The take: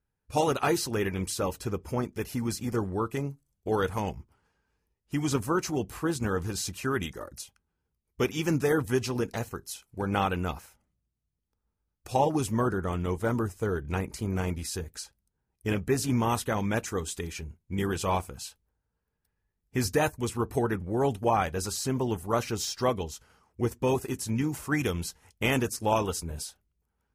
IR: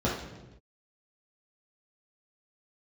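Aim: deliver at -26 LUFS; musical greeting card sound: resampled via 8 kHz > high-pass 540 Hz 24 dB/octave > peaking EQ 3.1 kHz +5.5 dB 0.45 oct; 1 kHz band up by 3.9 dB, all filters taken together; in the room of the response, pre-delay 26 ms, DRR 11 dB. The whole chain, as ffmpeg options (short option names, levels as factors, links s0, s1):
-filter_complex "[0:a]equalizer=f=1000:t=o:g=5,asplit=2[s0][s1];[1:a]atrim=start_sample=2205,adelay=26[s2];[s1][s2]afir=irnorm=-1:irlink=0,volume=0.075[s3];[s0][s3]amix=inputs=2:normalize=0,aresample=8000,aresample=44100,highpass=f=540:w=0.5412,highpass=f=540:w=1.3066,equalizer=f=3100:t=o:w=0.45:g=5.5,volume=1.88"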